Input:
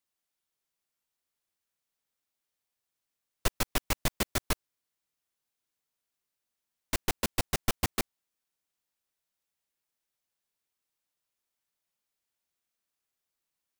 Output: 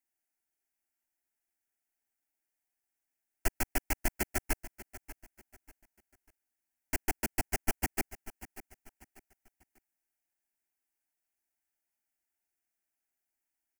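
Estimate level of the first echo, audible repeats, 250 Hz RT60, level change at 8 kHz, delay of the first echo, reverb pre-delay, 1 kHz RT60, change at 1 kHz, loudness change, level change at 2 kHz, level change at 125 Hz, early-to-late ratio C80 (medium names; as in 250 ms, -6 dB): -16.0 dB, 2, no reverb, -2.5 dB, 591 ms, no reverb, no reverb, -3.0 dB, -2.5 dB, -1.0 dB, -5.0 dB, no reverb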